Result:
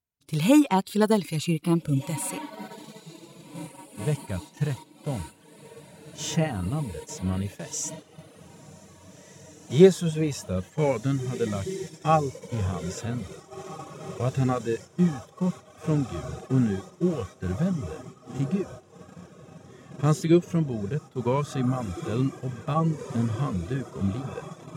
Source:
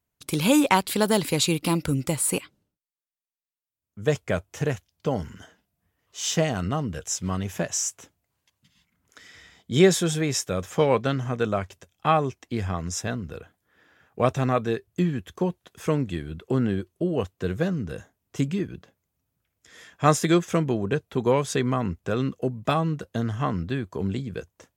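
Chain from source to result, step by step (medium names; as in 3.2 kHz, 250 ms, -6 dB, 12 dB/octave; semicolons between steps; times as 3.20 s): on a send: echo that smears into a reverb 1762 ms, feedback 76%, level -12 dB; on the sum: gate -33 dBFS, range -9 dB; reverb removal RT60 0.8 s; harmonic-percussive split percussive -16 dB; trim +3 dB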